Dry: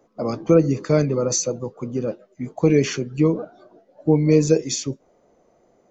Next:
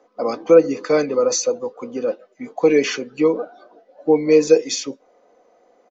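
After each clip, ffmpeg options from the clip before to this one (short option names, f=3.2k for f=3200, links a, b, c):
-filter_complex "[0:a]acrossover=split=330 6300:gain=0.1 1 0.0891[a][b][c];[a][b][c]amix=inputs=3:normalize=0,aecho=1:1:4:0.44,volume=4.5dB"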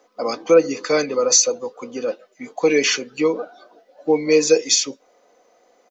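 -af "highshelf=f=5.6k:g=-8.5,crystalizer=i=7:c=0,volume=-3dB"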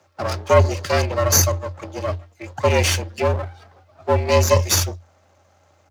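-af "bandreject=f=113.8:t=h:w=4,bandreject=f=227.6:t=h:w=4,aeval=exprs='max(val(0),0)':c=same,afreqshift=87,volume=3dB"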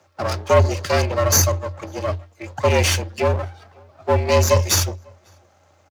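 -filter_complex "[0:a]asplit=2[a][b];[b]aeval=exprs='0.211*(abs(mod(val(0)/0.211+3,4)-2)-1)':c=same,volume=-12dB[c];[a][c]amix=inputs=2:normalize=0,asplit=2[d][e];[e]adelay=548.1,volume=-30dB,highshelf=f=4k:g=-12.3[f];[d][f]amix=inputs=2:normalize=0,volume=-1dB"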